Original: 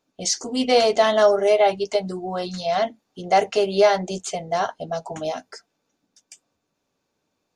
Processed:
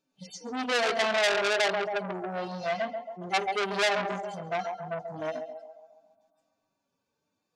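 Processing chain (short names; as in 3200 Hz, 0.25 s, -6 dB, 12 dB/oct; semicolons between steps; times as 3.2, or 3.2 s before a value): median-filter separation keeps harmonic; on a send: narrowing echo 0.137 s, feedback 60%, band-pass 930 Hz, level -6 dB; on the sum: core saturation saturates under 3700 Hz; gain -3.5 dB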